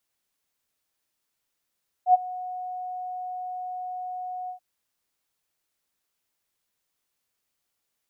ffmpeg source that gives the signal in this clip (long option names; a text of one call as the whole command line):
ffmpeg -f lavfi -i "aevalsrc='0.282*sin(2*PI*732*t)':duration=2.532:sample_rate=44100,afade=type=in:duration=0.08,afade=type=out:start_time=0.08:duration=0.022:silence=0.1,afade=type=out:start_time=2.43:duration=0.102" out.wav